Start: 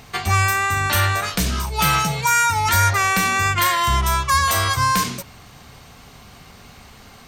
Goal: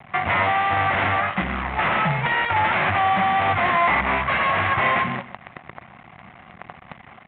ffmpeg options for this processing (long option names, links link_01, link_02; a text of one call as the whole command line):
ffmpeg -i in.wav -af "aresample=16000,aeval=exprs='(mod(5.01*val(0)+1,2)-1)/5.01':channel_layout=same,aresample=44100,aemphasis=mode=reproduction:type=riaa,acrusher=bits=5:dc=4:mix=0:aa=0.000001,crystalizer=i=4.5:c=0,asoftclip=type=hard:threshold=-9.5dB,highpass=210,equalizer=frequency=290:width_type=q:width=4:gain=-8,equalizer=frequency=440:width_type=q:width=4:gain=-9,equalizer=frequency=730:width_type=q:width=4:gain=7,equalizer=frequency=1100:width_type=q:width=4:gain=3,equalizer=frequency=2000:width_type=q:width=4:gain=6,lowpass=frequency=2400:width=0.5412,lowpass=frequency=2400:width=1.3066,aecho=1:1:126:0.178,volume=-1dB" -ar 8000 -c:a adpcm_g726 -b:a 40k out.wav